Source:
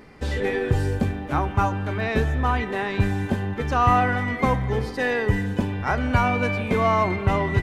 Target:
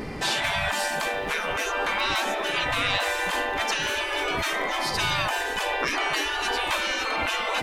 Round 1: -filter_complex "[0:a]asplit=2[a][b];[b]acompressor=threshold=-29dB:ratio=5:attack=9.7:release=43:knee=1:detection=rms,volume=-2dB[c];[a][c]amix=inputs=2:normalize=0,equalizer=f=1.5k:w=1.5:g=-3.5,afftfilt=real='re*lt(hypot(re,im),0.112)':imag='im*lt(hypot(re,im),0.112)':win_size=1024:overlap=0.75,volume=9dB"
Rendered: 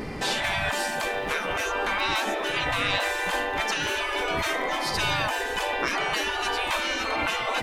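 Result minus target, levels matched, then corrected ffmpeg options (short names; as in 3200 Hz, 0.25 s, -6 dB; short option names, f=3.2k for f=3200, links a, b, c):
compressor: peak gain reduction +5.5 dB
-filter_complex "[0:a]asplit=2[a][b];[b]acompressor=threshold=-22dB:ratio=5:attack=9.7:release=43:knee=1:detection=rms,volume=-2dB[c];[a][c]amix=inputs=2:normalize=0,equalizer=f=1.5k:w=1.5:g=-3.5,afftfilt=real='re*lt(hypot(re,im),0.112)':imag='im*lt(hypot(re,im),0.112)':win_size=1024:overlap=0.75,volume=9dB"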